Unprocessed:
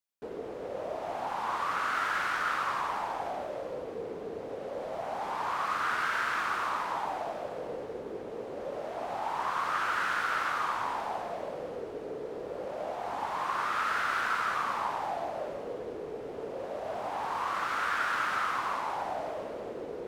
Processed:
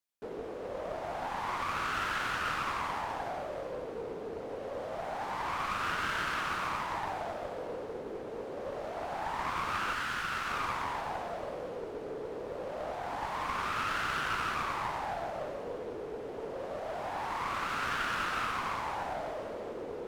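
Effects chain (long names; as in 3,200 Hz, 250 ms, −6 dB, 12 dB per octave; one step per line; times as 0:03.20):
0:09.93–0:10.50: high-pass filter 1,100 Hz 6 dB per octave
asymmetric clip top −38 dBFS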